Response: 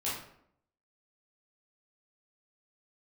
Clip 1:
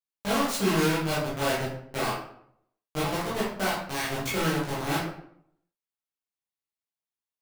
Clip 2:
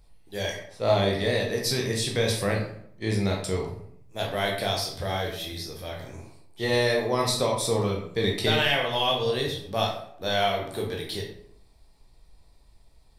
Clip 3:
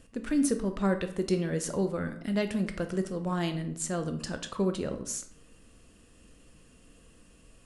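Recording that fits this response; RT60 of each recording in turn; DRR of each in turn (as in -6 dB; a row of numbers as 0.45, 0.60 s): 1; 0.70, 0.70, 0.70 s; -9.0, -1.5, 7.0 dB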